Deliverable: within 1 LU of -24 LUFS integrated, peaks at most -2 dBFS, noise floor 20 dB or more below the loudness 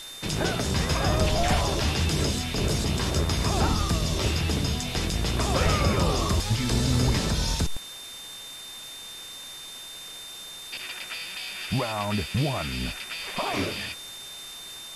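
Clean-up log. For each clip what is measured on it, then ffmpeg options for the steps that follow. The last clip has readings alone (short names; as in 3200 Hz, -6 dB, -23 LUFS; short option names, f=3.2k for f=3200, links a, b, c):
steady tone 3600 Hz; tone level -40 dBFS; noise floor -41 dBFS; noise floor target -47 dBFS; loudness -26.5 LUFS; peak -11.0 dBFS; loudness target -24.0 LUFS
-> -af "bandreject=f=3.6k:w=30"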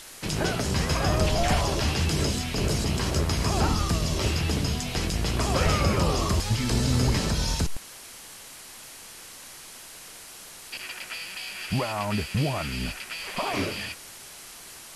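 steady tone none; noise floor -45 dBFS; noise floor target -47 dBFS
-> -af "afftdn=nr=6:nf=-45"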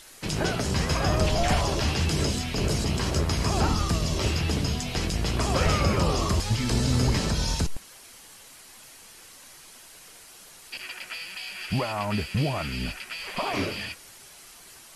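noise floor -49 dBFS; loudness -26.5 LUFS; peak -11.0 dBFS; loudness target -24.0 LUFS
-> -af "volume=2.5dB"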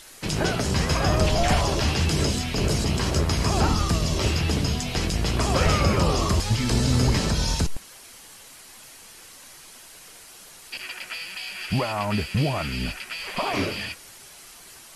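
loudness -24.0 LUFS; peak -8.5 dBFS; noise floor -47 dBFS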